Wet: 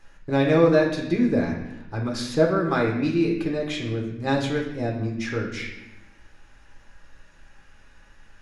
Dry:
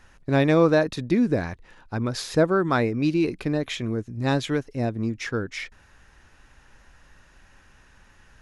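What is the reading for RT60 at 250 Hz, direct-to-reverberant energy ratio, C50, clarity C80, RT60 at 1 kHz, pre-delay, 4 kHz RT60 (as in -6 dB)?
1.4 s, -2.0 dB, 5.0 dB, 7.5 dB, 0.85 s, 6 ms, 0.80 s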